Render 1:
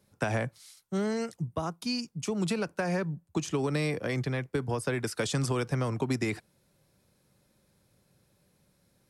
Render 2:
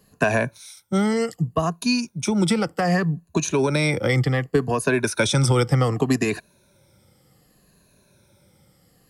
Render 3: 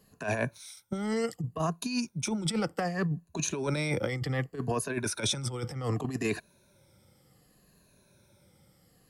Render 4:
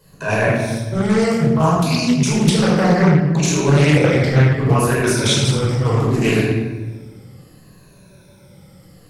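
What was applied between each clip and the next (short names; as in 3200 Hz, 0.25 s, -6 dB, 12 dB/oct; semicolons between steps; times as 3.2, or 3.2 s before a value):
moving spectral ripple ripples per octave 1.5, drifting -0.66 Hz, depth 13 dB; gain +8 dB
negative-ratio compressor -22 dBFS, ratio -0.5; wow and flutter 18 cents; gain -7.5 dB
shoebox room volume 1000 m³, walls mixed, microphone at 5 m; Doppler distortion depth 0.38 ms; gain +5 dB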